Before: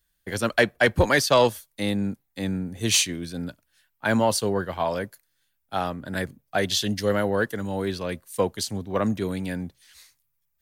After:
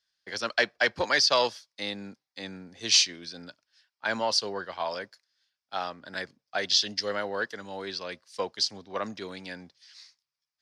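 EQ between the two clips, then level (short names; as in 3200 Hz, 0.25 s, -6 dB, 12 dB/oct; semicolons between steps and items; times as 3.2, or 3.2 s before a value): HPF 1400 Hz 6 dB/oct; synth low-pass 5100 Hz, resonance Q 5.4; high shelf 2300 Hz -9.5 dB; +1.5 dB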